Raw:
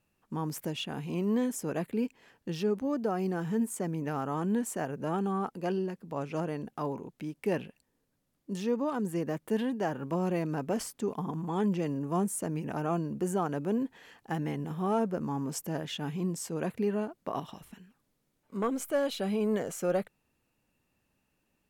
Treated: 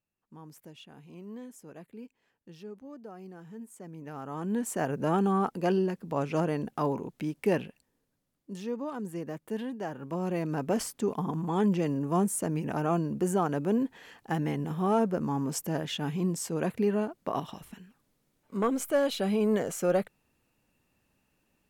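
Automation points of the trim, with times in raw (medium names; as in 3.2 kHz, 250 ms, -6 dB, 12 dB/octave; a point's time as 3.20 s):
3.66 s -14.5 dB
4.26 s -6 dB
4.89 s +5 dB
7.35 s +5 dB
8.52 s -4.5 dB
9.94 s -4.5 dB
10.71 s +3 dB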